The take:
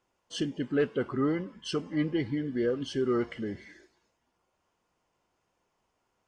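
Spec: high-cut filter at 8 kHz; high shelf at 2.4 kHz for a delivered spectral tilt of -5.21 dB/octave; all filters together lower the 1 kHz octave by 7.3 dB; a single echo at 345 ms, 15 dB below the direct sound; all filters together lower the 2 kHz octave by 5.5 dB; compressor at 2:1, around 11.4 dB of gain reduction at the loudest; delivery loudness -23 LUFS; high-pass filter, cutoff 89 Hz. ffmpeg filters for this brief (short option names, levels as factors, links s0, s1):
-af "highpass=89,lowpass=8000,equalizer=f=1000:t=o:g=-9,equalizer=f=2000:t=o:g=-6,highshelf=f=2400:g=5,acompressor=threshold=0.00501:ratio=2,aecho=1:1:345:0.178,volume=8.91"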